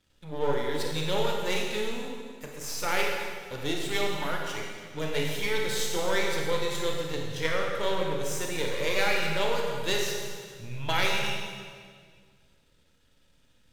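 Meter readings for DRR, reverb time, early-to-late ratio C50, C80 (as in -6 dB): -0.5 dB, 1.9 s, 1.0 dB, 2.5 dB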